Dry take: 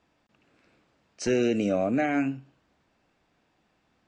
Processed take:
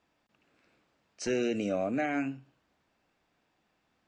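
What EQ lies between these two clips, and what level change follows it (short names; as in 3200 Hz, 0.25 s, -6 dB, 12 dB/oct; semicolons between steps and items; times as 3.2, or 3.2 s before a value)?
low shelf 460 Hz -3.5 dB; notches 60/120 Hz; -3.5 dB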